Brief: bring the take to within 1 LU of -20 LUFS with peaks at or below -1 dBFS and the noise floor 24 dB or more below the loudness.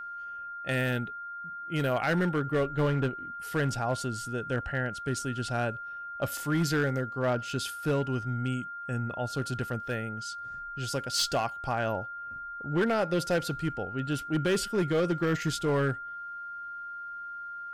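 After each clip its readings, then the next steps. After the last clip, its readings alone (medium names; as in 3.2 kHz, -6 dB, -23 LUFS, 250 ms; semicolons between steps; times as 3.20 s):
clipped samples 1.1%; clipping level -21.0 dBFS; steady tone 1.4 kHz; tone level -37 dBFS; loudness -31.0 LUFS; peak level -21.0 dBFS; loudness target -20.0 LUFS
-> clip repair -21 dBFS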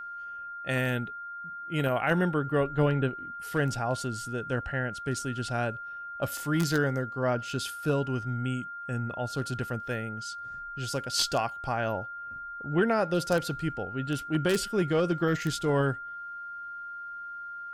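clipped samples 0.0%; steady tone 1.4 kHz; tone level -37 dBFS
-> band-stop 1.4 kHz, Q 30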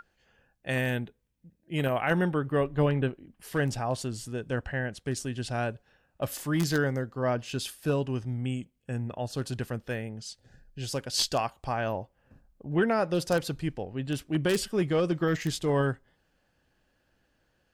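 steady tone not found; loudness -30.0 LUFS; peak level -11.5 dBFS; loudness target -20.0 LUFS
-> trim +10 dB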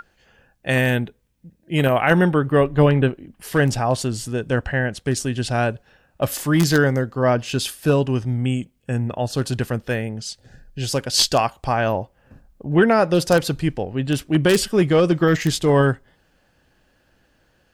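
loudness -20.0 LUFS; peak level -1.5 dBFS; noise floor -63 dBFS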